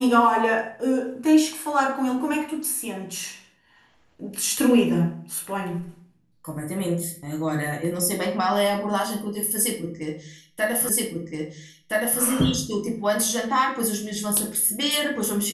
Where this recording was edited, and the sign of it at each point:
0:10.89: the same again, the last 1.32 s

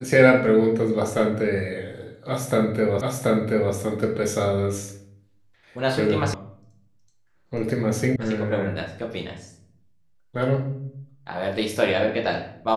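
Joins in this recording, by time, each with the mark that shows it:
0:03.01: the same again, the last 0.73 s
0:06.34: cut off before it has died away
0:08.16: cut off before it has died away

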